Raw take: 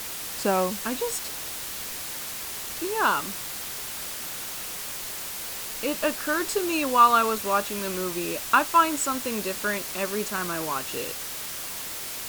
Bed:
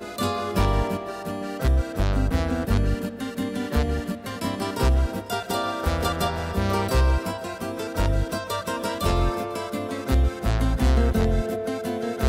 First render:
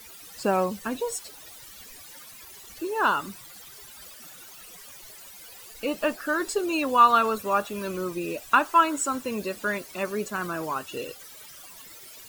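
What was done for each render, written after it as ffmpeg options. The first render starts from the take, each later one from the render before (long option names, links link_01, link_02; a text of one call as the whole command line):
ffmpeg -i in.wav -af "afftdn=noise_reduction=16:noise_floor=-35" out.wav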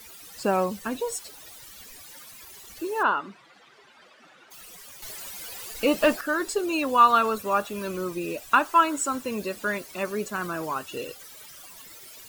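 ffmpeg -i in.wav -filter_complex "[0:a]asplit=3[link_01][link_02][link_03];[link_01]afade=type=out:start_time=3.02:duration=0.02[link_04];[link_02]highpass=230,lowpass=2500,afade=type=in:start_time=3.02:duration=0.02,afade=type=out:start_time=4.5:duration=0.02[link_05];[link_03]afade=type=in:start_time=4.5:duration=0.02[link_06];[link_04][link_05][link_06]amix=inputs=3:normalize=0,asettb=1/sr,asplit=3[link_07][link_08][link_09];[link_07]atrim=end=5.024[link_10];[link_08]atrim=start=5.02:end=6.21,asetpts=PTS-STARTPTS,afade=type=in:duration=0.004:curve=qsin,afade=type=out:start_time=1.186:duration=0.004:curve=qsin,aeval=exprs='0.282*sin(PI/2*1.41*val(0)/0.282)':channel_layout=same[link_11];[link_09]atrim=start=6.206[link_12];[link_10][link_11]acrossfade=duration=0.004:curve1=hsin:curve2=qsin[link_13];[link_13][link_12]acrossfade=duration=0.004:curve1=qsin:curve2=hsin" out.wav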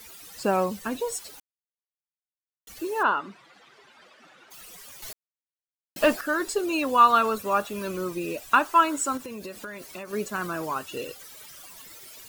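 ffmpeg -i in.wav -filter_complex "[0:a]asettb=1/sr,asplit=3[link_01][link_02][link_03];[link_01]atrim=end=9.174[link_04];[link_02]atrim=start=9.17:end=10.13,asetpts=PTS-STARTPTS,afade=type=in:duration=0.004:curve=qsin,afade=type=out:start_time=0.956:duration=0.004:curve=qsin,acompressor=threshold=-33dB:ratio=12:attack=3.2:release=140:knee=1:detection=peak[link_05];[link_03]atrim=start=10.126[link_06];[link_04][link_05]acrossfade=duration=0.004:curve1=hsin:curve2=qsin[link_07];[link_07][link_06]acrossfade=duration=0.004:curve1=qsin:curve2=hsin,asplit=5[link_08][link_09][link_10][link_11][link_12];[link_08]atrim=end=1.4,asetpts=PTS-STARTPTS,afade=type=out:start_time=1.396:duration=0.004:curve=hsin[link_13];[link_09]atrim=start=1.4:end=2.67,asetpts=PTS-STARTPTS,volume=0[link_14];[link_10]atrim=start=2.67:end=5.13,asetpts=PTS-STARTPTS,afade=type=in:duration=0.004:curve=hsin,afade=type=out:start_time=2.456:duration=0.004:curve=hsin[link_15];[link_11]atrim=start=5.13:end=5.96,asetpts=PTS-STARTPTS,volume=0[link_16];[link_12]atrim=start=5.96,asetpts=PTS-STARTPTS,afade=type=in:duration=0.004:curve=hsin[link_17];[link_13][link_14][link_15][link_16][link_17]concat=n=5:v=0:a=1" out.wav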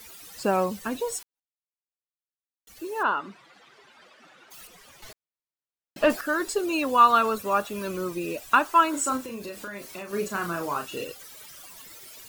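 ffmpeg -i in.wav -filter_complex "[0:a]asettb=1/sr,asplit=3[link_01][link_02][link_03];[link_01]atrim=end=4.674[link_04];[link_02]atrim=start=4.67:end=6.1,asetpts=PTS-STARTPTS,afade=type=in:duration=0.004:curve=qsin,afade=type=out:start_time=1.426:duration=0.004:curve=qsin,lowpass=frequency=3000:poles=1[link_05];[link_03]atrim=start=6.096[link_06];[link_04][link_05]acrossfade=duration=0.004:curve1=hsin:curve2=qsin[link_07];[link_07][link_06]acrossfade=duration=0.004:curve1=qsin:curve2=hsin,asettb=1/sr,asplit=3[link_08][link_09][link_10];[link_08]atrim=end=8.904[link_11];[link_09]atrim=start=8.9:end=11.04,asetpts=PTS-STARTPTS,afade=type=in:duration=0.004:curve=qsin,afade=type=out:start_time=2.136:duration=0.004:curve=qsin,asplit=2[link_12][link_13];[link_13]adelay=35,volume=-5.5dB[link_14];[link_12][link_14]amix=inputs=2:normalize=0,atrim=end_sample=94374[link_15];[link_10]atrim=start=11.036[link_16];[link_11][link_15]acrossfade=duration=0.004:curve1=hsin:curve2=qsin[link_17];[link_17][link_16]acrossfade=duration=0.004:curve1=qsin:curve2=hsin,asplit=2[link_18][link_19];[link_18]atrim=end=1.23,asetpts=PTS-STARTPTS,afade=type=out:start_time=1.226:duration=0.004:curve=hsin[link_20];[link_19]atrim=start=1.23,asetpts=PTS-STARTPTS,afade=type=in:duration=2.04:curve=qua[link_21];[link_20][link_21]concat=n=2:v=0:a=1" out.wav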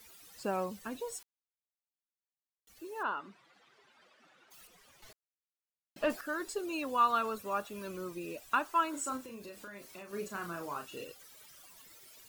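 ffmpeg -i in.wav -af "volume=-10.5dB" out.wav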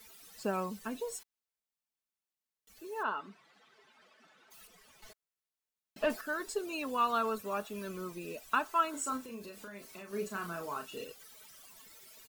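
ffmpeg -i in.wav -af "aecho=1:1:4.6:0.4" out.wav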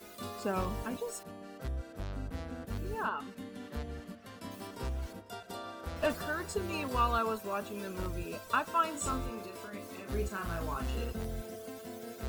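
ffmpeg -i in.wav -i bed.wav -filter_complex "[1:a]volume=-17dB[link_01];[0:a][link_01]amix=inputs=2:normalize=0" out.wav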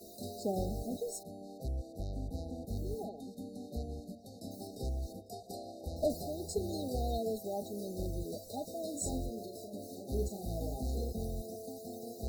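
ffmpeg -i in.wav -af "afftfilt=real='re*(1-between(b*sr/4096,820,3700))':imag='im*(1-between(b*sr/4096,820,3700))':win_size=4096:overlap=0.75" out.wav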